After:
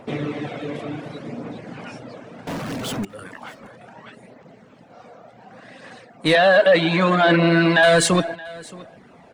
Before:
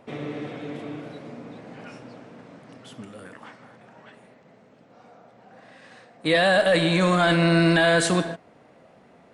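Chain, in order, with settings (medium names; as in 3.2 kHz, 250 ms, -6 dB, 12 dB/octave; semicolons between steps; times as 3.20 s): phaser 0.68 Hz, delay 1.9 ms, feedback 25%; 2.47–3.05 s: power-law waveshaper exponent 0.35; reverb removal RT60 0.58 s; in parallel at -4 dB: saturation -23 dBFS, distortion -8 dB; 6.35–7.83 s: on the sum: band-pass 200–3600 Hz; on a send: delay 623 ms -21.5 dB; on the sum: trim +3 dB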